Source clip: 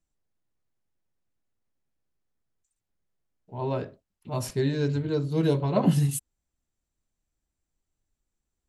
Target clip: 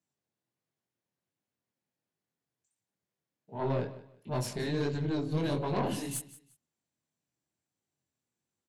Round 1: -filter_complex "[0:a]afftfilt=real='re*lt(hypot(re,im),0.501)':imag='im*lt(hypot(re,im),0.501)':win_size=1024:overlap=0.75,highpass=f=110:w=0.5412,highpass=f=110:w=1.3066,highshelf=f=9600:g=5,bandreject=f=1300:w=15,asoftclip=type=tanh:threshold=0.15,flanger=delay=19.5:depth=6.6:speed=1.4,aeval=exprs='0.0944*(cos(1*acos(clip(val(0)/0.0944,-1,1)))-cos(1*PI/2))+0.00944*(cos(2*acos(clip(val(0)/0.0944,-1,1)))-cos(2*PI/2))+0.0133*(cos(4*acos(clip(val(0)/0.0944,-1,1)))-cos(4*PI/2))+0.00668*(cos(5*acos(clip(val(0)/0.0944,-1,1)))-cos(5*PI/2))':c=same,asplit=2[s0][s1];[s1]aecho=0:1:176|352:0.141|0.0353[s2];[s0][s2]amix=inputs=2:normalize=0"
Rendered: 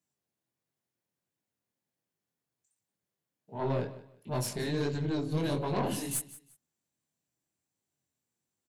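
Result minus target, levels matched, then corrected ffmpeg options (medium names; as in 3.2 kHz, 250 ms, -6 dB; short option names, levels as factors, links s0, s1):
8 kHz band +3.5 dB
-filter_complex "[0:a]afftfilt=real='re*lt(hypot(re,im),0.501)':imag='im*lt(hypot(re,im),0.501)':win_size=1024:overlap=0.75,highpass=f=110:w=0.5412,highpass=f=110:w=1.3066,highshelf=f=9600:g=-6,bandreject=f=1300:w=15,asoftclip=type=tanh:threshold=0.15,flanger=delay=19.5:depth=6.6:speed=1.4,aeval=exprs='0.0944*(cos(1*acos(clip(val(0)/0.0944,-1,1)))-cos(1*PI/2))+0.00944*(cos(2*acos(clip(val(0)/0.0944,-1,1)))-cos(2*PI/2))+0.0133*(cos(4*acos(clip(val(0)/0.0944,-1,1)))-cos(4*PI/2))+0.00668*(cos(5*acos(clip(val(0)/0.0944,-1,1)))-cos(5*PI/2))':c=same,asplit=2[s0][s1];[s1]aecho=0:1:176|352:0.141|0.0353[s2];[s0][s2]amix=inputs=2:normalize=0"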